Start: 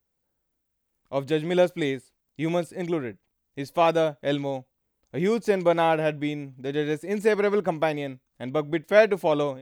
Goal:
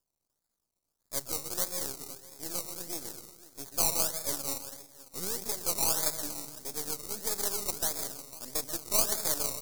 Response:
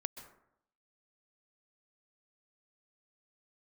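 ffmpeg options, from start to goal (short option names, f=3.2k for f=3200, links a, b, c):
-filter_complex "[0:a]acrossover=split=700|1400[a][b][c];[a]alimiter=limit=-19.5dB:level=0:latency=1:release=269[d];[d][b][c]amix=inputs=3:normalize=0,asettb=1/sr,asplit=3[e][f][g];[e]atrim=end=1.484[h];[f]atrim=start=1.48:end=2.46,asetpts=PTS-STARTPTS,afade=t=in:d=0.004:c=qsin,afade=t=out:st=0.976:d=0.004:c=qsin,aeval=exprs='0.237*(cos(1*acos(clip(val(0)/0.237,-1,1)))-cos(1*PI/2))+0.0133*(cos(7*acos(clip(val(0)/0.237,-1,1)))-cos(7*PI/2))+0.00596*(cos(8*acos(clip(val(0)/0.237,-1,1)))-cos(8*PI/2))':c=same[i];[g]atrim=start=2.456[j];[h][i]acrossfade=d=0.004:c1=hsin:c2=qsin[k];[k][j]acrossfade=d=0.004:c1=qsin:c2=hsin,equalizer=f=230:t=o:w=1.9:g=-3,aecho=1:1:503:0.141[l];[1:a]atrim=start_sample=2205[m];[l][m]afir=irnorm=-1:irlink=0,acrusher=samples=21:mix=1:aa=0.000001:lfo=1:lforange=12.6:lforate=1.6,aeval=exprs='max(val(0),0)':c=same,aexciter=amount=7.1:drive=6.4:freq=4.3k,volume=-7.5dB"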